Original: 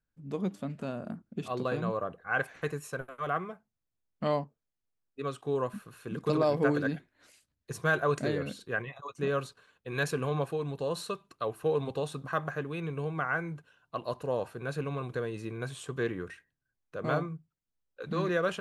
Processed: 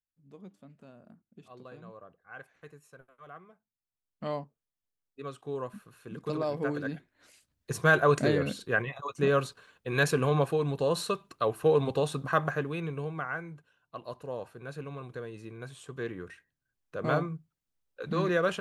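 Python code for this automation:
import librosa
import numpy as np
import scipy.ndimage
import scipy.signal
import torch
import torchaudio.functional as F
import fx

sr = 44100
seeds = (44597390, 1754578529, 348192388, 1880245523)

y = fx.gain(x, sr, db=fx.line((3.43, -16.5), (4.29, -5.0), (6.76, -5.0), (7.72, 5.0), (12.46, 5.0), (13.49, -6.0), (15.8, -6.0), (17.02, 2.0)))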